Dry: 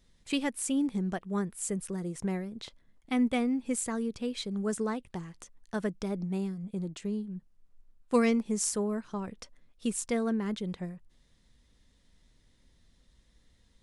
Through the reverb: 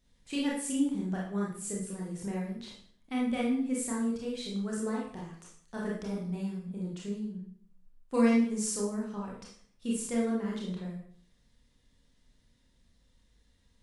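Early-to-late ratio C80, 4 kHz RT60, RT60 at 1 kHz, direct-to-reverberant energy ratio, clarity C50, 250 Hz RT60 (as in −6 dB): 7.5 dB, 0.50 s, 0.55 s, −4.0 dB, 2.5 dB, 0.65 s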